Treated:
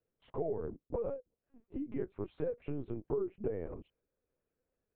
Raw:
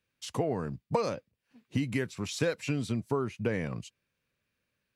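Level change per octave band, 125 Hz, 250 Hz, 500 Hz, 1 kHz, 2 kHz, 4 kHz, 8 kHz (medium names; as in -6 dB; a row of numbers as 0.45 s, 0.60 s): -11.5 dB, -8.0 dB, -4.0 dB, -13.0 dB, -22.0 dB, under -25 dB, under -35 dB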